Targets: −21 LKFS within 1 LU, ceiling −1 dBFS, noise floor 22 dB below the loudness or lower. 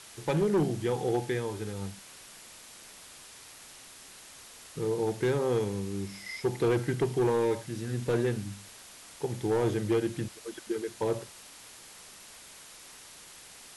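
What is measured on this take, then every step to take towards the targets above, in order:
share of clipped samples 1.0%; peaks flattened at −21.0 dBFS; background noise floor −50 dBFS; target noise floor −53 dBFS; integrated loudness −30.5 LKFS; sample peak −21.0 dBFS; target loudness −21.0 LKFS
→ clipped peaks rebuilt −21 dBFS
broadband denoise 6 dB, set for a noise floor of −50 dBFS
level +9.5 dB

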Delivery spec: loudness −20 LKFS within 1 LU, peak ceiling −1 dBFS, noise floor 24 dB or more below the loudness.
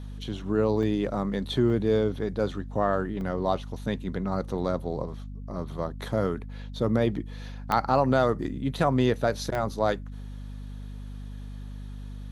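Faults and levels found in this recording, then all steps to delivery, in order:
number of dropouts 5; longest dropout 1.1 ms; mains hum 50 Hz; hum harmonics up to 250 Hz; level of the hum −36 dBFS; integrated loudness −27.5 LKFS; sample peak −9.0 dBFS; target loudness −20.0 LKFS
→ repair the gap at 0:00.83/0:01.70/0:03.21/0:07.72/0:09.55, 1.1 ms
hum removal 50 Hz, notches 5
level +7.5 dB

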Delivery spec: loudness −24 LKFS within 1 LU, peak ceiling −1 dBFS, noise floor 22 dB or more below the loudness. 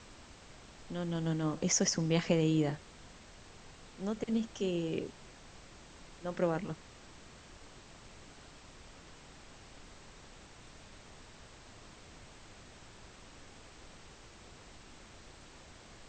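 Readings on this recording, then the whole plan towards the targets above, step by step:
background noise floor −55 dBFS; target noise floor −56 dBFS; integrated loudness −34.0 LKFS; sample peak −15.5 dBFS; target loudness −24.0 LKFS
→ noise reduction from a noise print 6 dB
level +10 dB

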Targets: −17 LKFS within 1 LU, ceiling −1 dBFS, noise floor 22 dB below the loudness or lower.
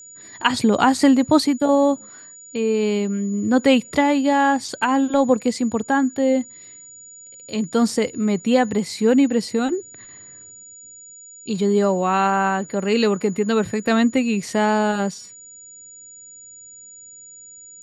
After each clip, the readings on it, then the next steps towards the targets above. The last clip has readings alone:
interfering tone 6,900 Hz; level of the tone −40 dBFS; integrated loudness −19.5 LKFS; sample peak −2.5 dBFS; target loudness −17.0 LKFS
→ notch filter 6,900 Hz, Q 30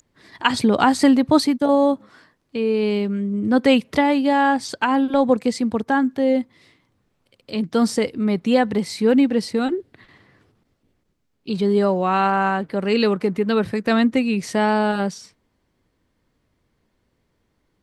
interfering tone none found; integrated loudness −19.5 LKFS; sample peak −2.5 dBFS; target loudness −17.0 LKFS
→ level +2.5 dB
brickwall limiter −1 dBFS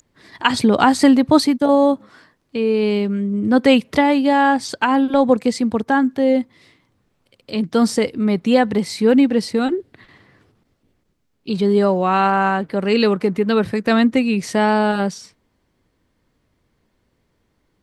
integrated loudness −17.0 LKFS; sample peak −1.0 dBFS; background noise floor −67 dBFS

